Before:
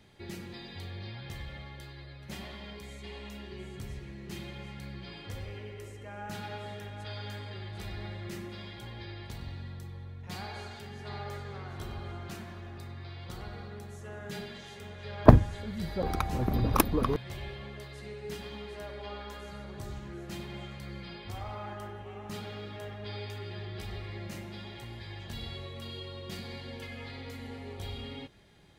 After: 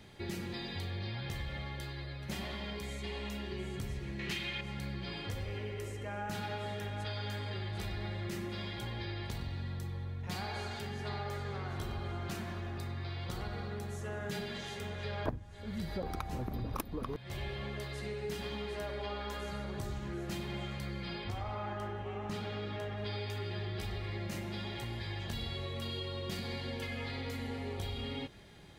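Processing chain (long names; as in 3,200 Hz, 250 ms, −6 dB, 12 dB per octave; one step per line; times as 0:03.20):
0:04.19–0:04.61: parametric band 2,600 Hz +14 dB 2.1 octaves
downward compressor 10 to 1, threshold −39 dBFS, peak gain reduction 30 dB
0:21.24–0:22.98: high-shelf EQ 8,400 Hz −12 dB
level +4.5 dB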